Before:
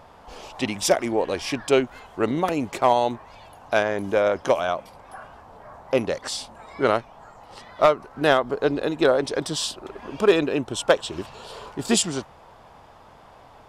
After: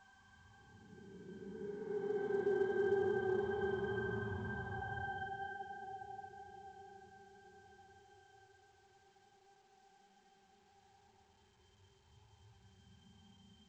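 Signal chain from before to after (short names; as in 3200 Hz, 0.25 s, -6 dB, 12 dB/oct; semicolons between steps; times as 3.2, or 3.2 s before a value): tracing distortion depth 0.15 ms; requantised 6-bit, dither triangular; octave resonator G, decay 0.64 s; reverb removal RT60 0.85 s; thirty-one-band EQ 315 Hz -5 dB, 500 Hz -12 dB, 1000 Hz +6 dB; Paulstretch 23×, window 0.05 s, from 6.75; low-pass opened by the level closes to 1500 Hz, open at -36 dBFS; gain +2.5 dB; A-law 128 kbps 16000 Hz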